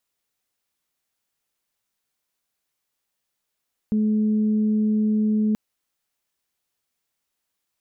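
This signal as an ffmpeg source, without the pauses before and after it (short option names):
-f lavfi -i "aevalsrc='0.133*sin(2*PI*214*t)+0.0188*sin(2*PI*428*t)':d=1.63:s=44100"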